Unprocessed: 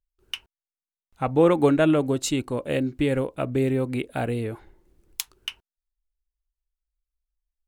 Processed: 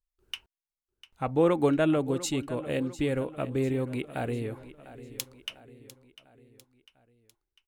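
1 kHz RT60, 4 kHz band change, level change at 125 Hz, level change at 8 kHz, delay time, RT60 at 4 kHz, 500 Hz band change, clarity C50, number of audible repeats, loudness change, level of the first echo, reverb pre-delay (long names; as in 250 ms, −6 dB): no reverb audible, −5.0 dB, −5.0 dB, −5.0 dB, 699 ms, no reverb audible, −5.0 dB, no reverb audible, 4, −5.0 dB, −16.0 dB, no reverb audible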